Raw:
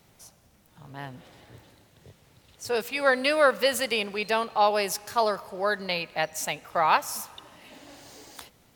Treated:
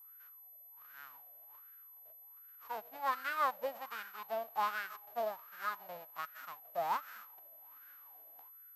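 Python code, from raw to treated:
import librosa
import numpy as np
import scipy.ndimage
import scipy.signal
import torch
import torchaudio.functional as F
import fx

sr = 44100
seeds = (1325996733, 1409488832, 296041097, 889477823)

y = fx.envelope_flatten(x, sr, power=0.1)
y = fx.wah_lfo(y, sr, hz=1.3, low_hz=630.0, high_hz=1500.0, q=7.1)
y = y + 10.0 ** (-55.0 / 20.0) * np.sin(2.0 * np.pi * 12000.0 * np.arange(len(y)) / sr)
y = y * 10.0 ** (1.0 / 20.0)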